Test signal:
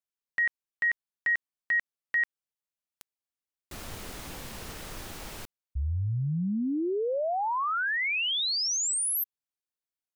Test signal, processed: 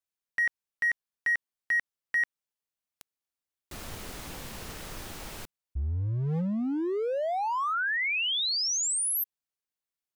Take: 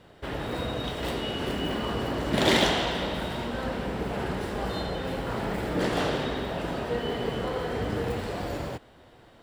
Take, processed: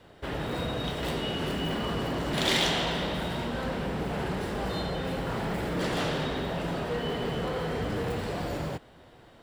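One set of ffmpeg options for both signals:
ffmpeg -i in.wav -filter_complex "[0:a]adynamicequalizer=threshold=0.00251:dfrequency=160:dqfactor=6.2:tfrequency=160:tqfactor=6.2:attack=5:release=100:ratio=0.375:range=4:mode=boostabove:tftype=bell,acrossover=split=2100[link_01][link_02];[link_01]asoftclip=type=hard:threshold=-27dB[link_03];[link_03][link_02]amix=inputs=2:normalize=0" out.wav

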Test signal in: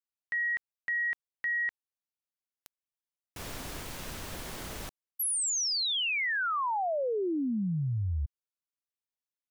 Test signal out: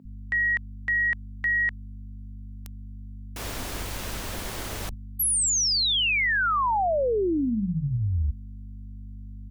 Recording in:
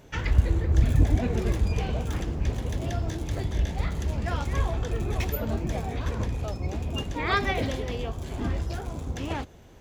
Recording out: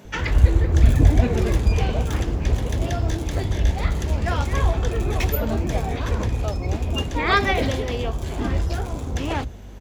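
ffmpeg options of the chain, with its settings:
ffmpeg -i in.wav -filter_complex "[0:a]aeval=exprs='val(0)+0.00631*(sin(2*PI*50*n/s)+sin(2*PI*2*50*n/s)/2+sin(2*PI*3*50*n/s)/3+sin(2*PI*4*50*n/s)/4+sin(2*PI*5*50*n/s)/5)':channel_layout=same,acrossover=split=160[link_01][link_02];[link_01]adelay=50[link_03];[link_03][link_02]amix=inputs=2:normalize=0,volume=6.5dB" out.wav

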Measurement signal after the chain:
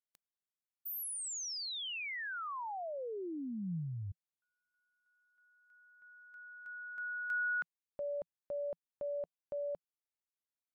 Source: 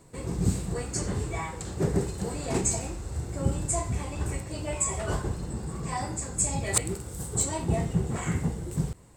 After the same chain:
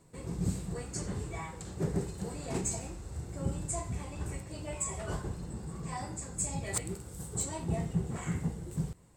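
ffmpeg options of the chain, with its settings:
ffmpeg -i in.wav -af "asoftclip=type=hard:threshold=-16dB,equalizer=frequency=170:width=3.5:gain=4,volume=-7dB" -ar 44100 -c:a libmp3lame -b:a 96k out.mp3

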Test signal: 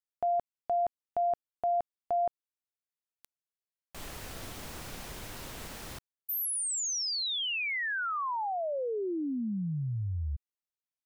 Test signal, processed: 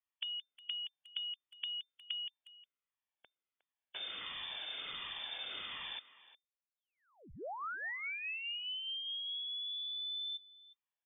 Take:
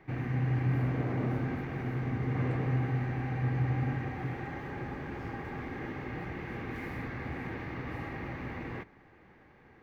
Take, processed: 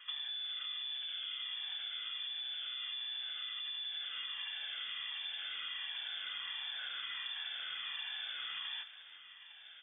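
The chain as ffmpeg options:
ffmpeg -i in.wav -filter_complex "[0:a]afftfilt=real='re*pow(10,11/40*sin(2*PI*(1.8*log(max(b,1)*sr/1024/100)/log(2)-(1.4)*(pts-256)/sr)))':imag='im*pow(10,11/40*sin(2*PI*(1.8*log(max(b,1)*sr/1024/100)/log(2)-(1.4)*(pts-256)/sr)))':win_size=1024:overlap=0.75,alimiter=level_in=1.5dB:limit=-24dB:level=0:latency=1:release=21,volume=-1.5dB,acompressor=threshold=-41dB:ratio=16:attack=15:release=176:knee=1:detection=peak,lowpass=frequency=3100:width_type=q:width=0.5098,lowpass=frequency=3100:width_type=q:width=0.6013,lowpass=frequency=3100:width_type=q:width=0.9,lowpass=frequency=3100:width_type=q:width=2.563,afreqshift=-3600,asplit=2[link_01][link_02];[link_02]adelay=360,highpass=300,lowpass=3400,asoftclip=type=hard:threshold=-37dB,volume=-16dB[link_03];[link_01][link_03]amix=inputs=2:normalize=0,volume=1.5dB" out.wav

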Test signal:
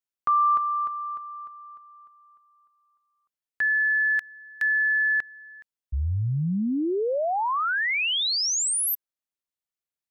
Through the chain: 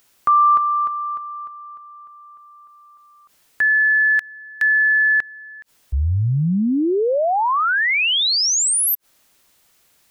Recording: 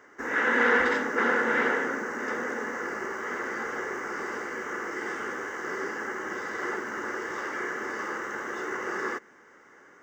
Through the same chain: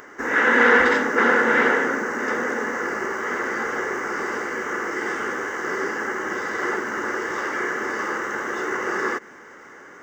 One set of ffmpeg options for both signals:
ffmpeg -i in.wav -af "acompressor=mode=upward:threshold=-44dB:ratio=2.5:attack=1.6:release=53:knee=2.83:detection=peak,volume=7dB" out.wav

